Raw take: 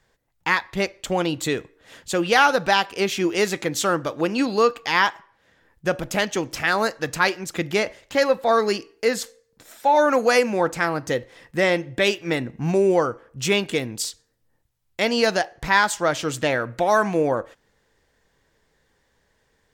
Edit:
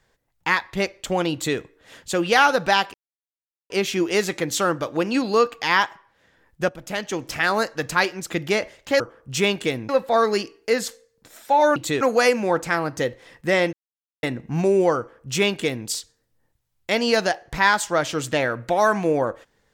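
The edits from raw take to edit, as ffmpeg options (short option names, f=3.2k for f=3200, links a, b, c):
-filter_complex "[0:a]asplit=9[a][b][c][d][e][f][g][h][i];[a]atrim=end=2.94,asetpts=PTS-STARTPTS,afade=t=out:st=2.936:d=0.004:c=hsin,apad=pad_dur=0.76[j];[b]atrim=start=2.94:end=5.93,asetpts=PTS-STARTPTS,afade=t=in:d=0.004:c=hsin,afade=t=out:st=2.986:d=0.004:c=hsin:silence=0.223872[k];[c]atrim=start=5.93:end=8.242,asetpts=PTS-STARTPTS,afade=t=in:d=0.67:silence=0.223872[l];[d]atrim=start=13.078:end=13.972[m];[e]atrim=start=8.238:end=10.112[n];[f]atrim=start=1.328:end=1.582[o];[g]atrim=start=10.108:end=11.83,asetpts=PTS-STARTPTS,afade=t=out:st=1.718:d=0.004:c=hsin[p];[h]atrim=start=11.83:end=12.33,asetpts=PTS-STARTPTS,volume=0[q];[i]atrim=start=12.33,asetpts=PTS-STARTPTS,afade=t=in:d=0.004:c=hsin[r];[j][k][l]concat=n=3:v=0:a=1[s];[s][m]acrossfade=d=0.004:c1=hsin:c2=hsin[t];[t][n]acrossfade=d=0.004:c1=hsin:c2=hsin[u];[u][o]acrossfade=d=0.004:c1=hsin:c2=hsin[v];[p][q][r]concat=n=3:v=0:a=1[w];[v][w]acrossfade=d=0.004:c1=hsin:c2=hsin"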